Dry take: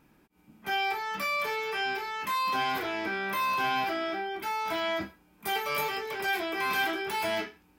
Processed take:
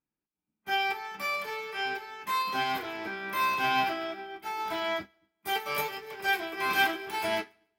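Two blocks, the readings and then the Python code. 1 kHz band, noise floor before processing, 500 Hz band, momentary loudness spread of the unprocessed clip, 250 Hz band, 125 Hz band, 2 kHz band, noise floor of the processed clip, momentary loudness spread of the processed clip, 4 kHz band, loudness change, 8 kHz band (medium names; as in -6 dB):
-0.5 dB, -63 dBFS, -2.0 dB, 5 LU, -2.5 dB, -1.5 dB, 0.0 dB, under -85 dBFS, 10 LU, 0.0 dB, -0.5 dB, -1.0 dB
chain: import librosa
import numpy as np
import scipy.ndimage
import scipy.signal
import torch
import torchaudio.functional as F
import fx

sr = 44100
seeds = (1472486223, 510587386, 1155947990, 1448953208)

y = fx.echo_split(x, sr, split_hz=490.0, low_ms=223, high_ms=142, feedback_pct=52, wet_db=-12.5)
y = fx.upward_expand(y, sr, threshold_db=-49.0, expansion=2.5)
y = y * librosa.db_to_amplitude(4.5)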